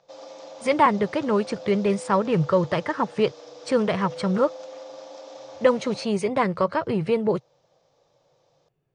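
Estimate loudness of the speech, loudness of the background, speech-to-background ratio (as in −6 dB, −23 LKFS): −23.5 LKFS, −41.0 LKFS, 17.5 dB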